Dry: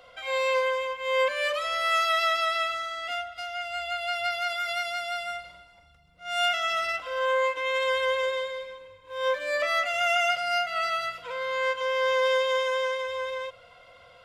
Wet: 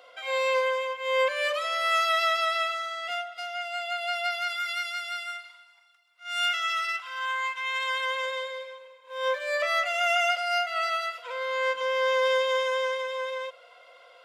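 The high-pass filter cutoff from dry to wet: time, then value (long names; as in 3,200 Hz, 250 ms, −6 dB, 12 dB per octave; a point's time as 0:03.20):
high-pass filter 24 dB per octave
0:03.91 320 Hz
0:04.58 1,000 Hz
0:07.55 1,000 Hz
0:08.66 470 Hz
0:11.30 470 Hz
0:11.90 140 Hz
0:12.21 380 Hz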